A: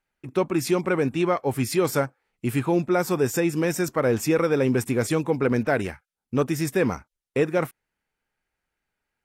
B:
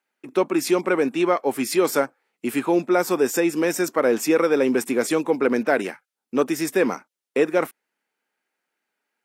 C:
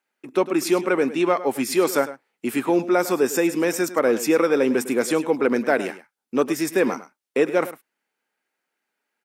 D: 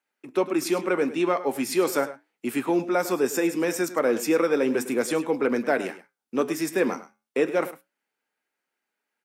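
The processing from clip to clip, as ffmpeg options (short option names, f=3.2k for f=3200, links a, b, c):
-af "highpass=f=230:w=0.5412,highpass=f=230:w=1.3066,volume=3dB"
-af "aecho=1:1:104:0.178"
-filter_complex "[0:a]acrossover=split=130|6300[a][b][c];[a]acrusher=bits=4:mode=log:mix=0:aa=0.000001[d];[d][b][c]amix=inputs=3:normalize=0,flanger=delay=6.7:depth=5.2:regen=-78:speed=0.36:shape=sinusoidal,volume=1dB"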